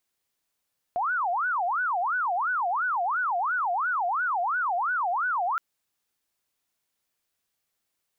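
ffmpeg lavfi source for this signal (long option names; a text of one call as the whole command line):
ffmpeg -f lavfi -i "aevalsrc='0.0668*sin(2*PI*(1096*t-404/(2*PI*2.9)*sin(2*PI*2.9*t)))':duration=4.62:sample_rate=44100" out.wav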